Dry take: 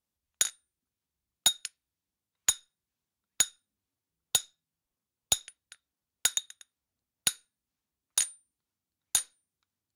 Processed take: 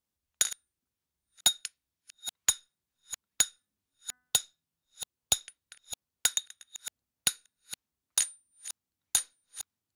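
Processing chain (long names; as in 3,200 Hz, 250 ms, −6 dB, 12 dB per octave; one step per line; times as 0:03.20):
delay that plays each chunk backwards 469 ms, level −14 dB
0:03.46–0:04.36: hum removal 249.9 Hz, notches 8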